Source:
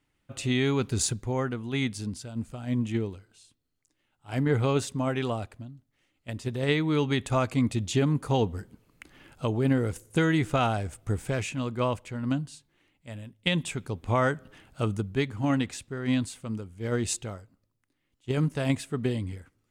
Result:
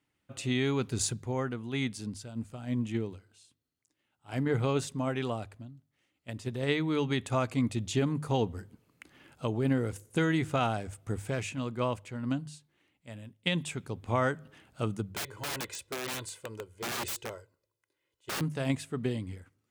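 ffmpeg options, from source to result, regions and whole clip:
-filter_complex "[0:a]asettb=1/sr,asplit=3[a][b][c];[a]atrim=end=15.144[d];[b]atrim=start=15.14:end=18.41,asetpts=PTS-STARTPTS,afade=t=in:d=0.004:c=qsin,afade=t=out:st=3.266:d=0.004:c=qsin,lowshelf=f=260:t=q:w=1.5:g=-7.5,aecho=1:1:2:0.74,atrim=end_sample=144207,aeval=exprs='(mod(21.1*val(0)+1,2)-1)/21.1':c=same[e];[c]atrim=start=18.406[f];[d][e]acrossfade=d=0.004:c1=hsin:c2=qsin[g];[g][f]acrossfade=d=0.004:c1=qsin:c2=hsin,highpass=71,bandreject=f=50:t=h:w=6,bandreject=f=100:t=h:w=6,bandreject=f=150:t=h:w=6,volume=-3.5dB"

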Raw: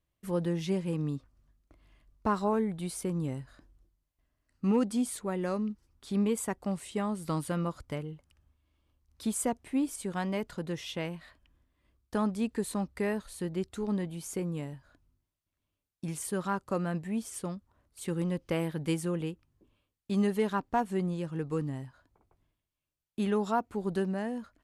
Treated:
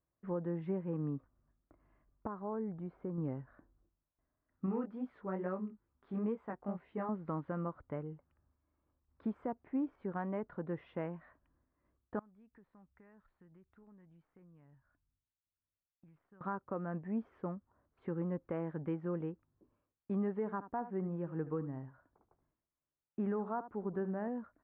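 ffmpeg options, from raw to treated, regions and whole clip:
-filter_complex "[0:a]asettb=1/sr,asplit=3[a][b][c];[a]atrim=end=2.274[d];[b]atrim=start=2.27:end=3.18,asetpts=PTS-STARTPTS,afade=t=in:d=0.004:c=qsin,afade=t=out:st=0.906:d=0.004:c=qsin,highshelf=f=2.2k:g=-10.5,acompressor=threshold=-39dB:ratio=1.5:attack=3.2:release=140:knee=1:detection=peak[e];[c]atrim=start=3.176[f];[d][e]acrossfade=d=0.004:c1=hsin:c2=qsin[g];[g][f]acrossfade=d=0.004:c1=qsin:c2=hsin,asettb=1/sr,asplit=3[h][i][j];[h]atrim=end=4.664[k];[i]atrim=start=4.66:end=7.09,asetpts=PTS-STARTPTS,afade=t=in:d=0.004:c=qsin,afade=t=out:st=2.426:d=0.004:c=qsin,highshelf=f=2.5k:g=5.5,flanger=delay=15.5:depth=6.4:speed=2.3[l];[j]atrim=start=7.086[m];[k][l]acrossfade=d=0.004:c1=hsin:c2=qsin[n];[n][m]acrossfade=d=0.004:c1=qsin:c2=hsin,asettb=1/sr,asplit=3[o][p][q];[o]atrim=end=12.194[r];[p]atrim=start=12.19:end=16.41,asetpts=PTS-STARTPTS,afade=t=in:d=0.004:c=qsin,afade=t=out:st=4.216:d=0.004:c=qsin,equalizer=f=460:t=o:w=3:g=-14.5,acompressor=threshold=-52dB:ratio=6:attack=3.2:release=140:knee=1:detection=peak,aeval=exprs='(tanh(89.1*val(0)+0.55)-tanh(0.55))/89.1':c=same[s];[q]atrim=start=16.406[t];[r][s]acrossfade=d=0.004:c1=hsin:c2=qsin[u];[u][t]acrossfade=d=0.004:c1=qsin:c2=hsin,asettb=1/sr,asplit=3[v][w][x];[v]atrim=end=20.384[y];[w]atrim=start=20.38:end=24.28,asetpts=PTS-STARTPTS,afade=t=in:d=0.004:c=qsin,afade=t=out:st=3.896:d=0.004:c=qsin,acrossover=split=3100[z][aa];[aa]acompressor=threshold=-60dB:ratio=4:attack=1:release=60[ab];[z][ab]amix=inputs=2:normalize=0,aecho=1:1:75:0.188,atrim=end_sample=171990[ac];[x]atrim=start=24.276[ad];[y][ac]acrossfade=d=0.004:c1=hsin:c2=qsin[ae];[ae][ad]acrossfade=d=0.004:c1=qsin:c2=hsin,lowpass=f=1.6k:w=0.5412,lowpass=f=1.6k:w=1.3066,lowshelf=f=91:g=-11.5,alimiter=level_in=2dB:limit=-24dB:level=0:latency=1:release=417,volume=-2dB,volume=-2dB"

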